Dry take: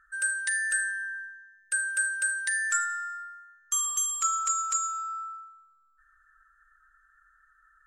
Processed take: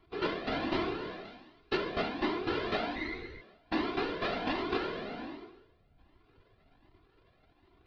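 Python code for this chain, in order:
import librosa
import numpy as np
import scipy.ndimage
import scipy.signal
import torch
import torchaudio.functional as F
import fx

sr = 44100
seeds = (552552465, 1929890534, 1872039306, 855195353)

y = np.r_[np.sort(x[:len(x) // 128 * 128].reshape(-1, 128), axis=1).ravel(), x[len(x) // 128 * 128:]]
y = scipy.signal.sosfilt(scipy.signal.butter(8, 4500.0, 'lowpass', fs=sr, output='sos'), y)
y = fx.low_shelf(y, sr, hz=140.0, db=10.0)
y = fx.room_flutter(y, sr, wall_m=3.4, rt60_s=1.0, at=(2.95, 3.4), fade=0.02)
y = fx.whisperise(y, sr, seeds[0])
y = fx.high_shelf(y, sr, hz=3500.0, db=7.5, at=(1.25, 1.77))
y = fx.comb_cascade(y, sr, direction='rising', hz=1.3)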